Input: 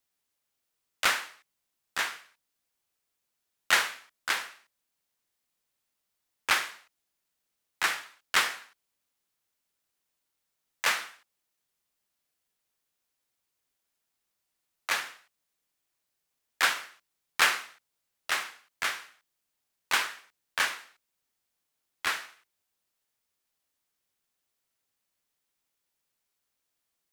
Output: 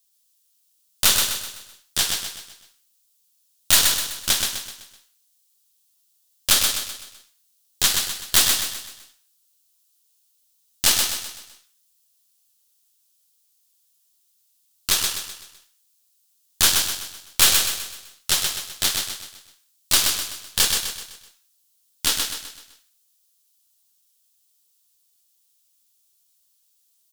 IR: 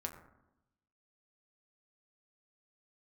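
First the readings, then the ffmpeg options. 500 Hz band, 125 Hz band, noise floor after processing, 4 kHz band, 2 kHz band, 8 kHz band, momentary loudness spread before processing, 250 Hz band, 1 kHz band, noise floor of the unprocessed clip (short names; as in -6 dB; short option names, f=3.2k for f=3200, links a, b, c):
+6.0 dB, n/a, -66 dBFS, +12.5 dB, -0.5 dB, +17.5 dB, 18 LU, +13.0 dB, 0.0 dB, -82 dBFS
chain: -filter_complex "[0:a]aeval=exprs='0.398*(cos(1*acos(clip(val(0)/0.398,-1,1)))-cos(1*PI/2))+0.112*(cos(8*acos(clip(val(0)/0.398,-1,1)))-cos(8*PI/2))':c=same,aexciter=amount=2.3:drive=10:freq=3k,asplit=2[a][b];[b]aecho=0:1:127|254|381|508|635:0.596|0.262|0.115|0.0507|0.0223[c];[a][c]amix=inputs=2:normalize=0,volume=-3dB"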